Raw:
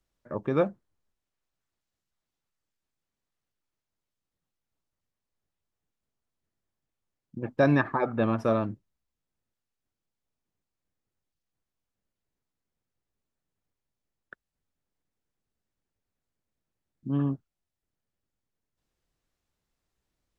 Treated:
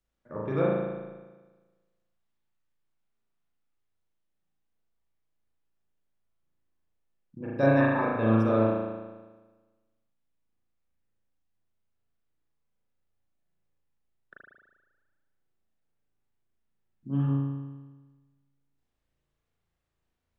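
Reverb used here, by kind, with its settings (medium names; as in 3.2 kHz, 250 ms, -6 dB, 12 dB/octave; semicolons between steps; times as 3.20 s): spring tank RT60 1.3 s, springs 36 ms, chirp 35 ms, DRR -6 dB; trim -6.5 dB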